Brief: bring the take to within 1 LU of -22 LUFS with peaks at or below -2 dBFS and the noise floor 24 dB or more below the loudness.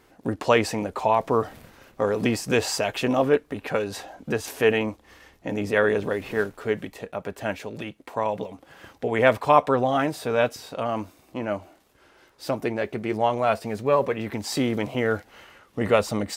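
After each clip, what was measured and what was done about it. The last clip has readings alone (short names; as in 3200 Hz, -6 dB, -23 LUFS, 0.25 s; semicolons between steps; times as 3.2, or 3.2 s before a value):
loudness -25.0 LUFS; peak -2.0 dBFS; loudness target -22.0 LUFS
-> gain +3 dB; limiter -2 dBFS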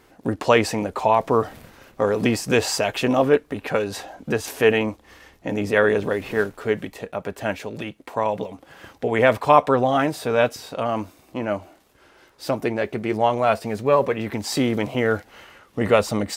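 loudness -22.0 LUFS; peak -2.0 dBFS; noise floor -56 dBFS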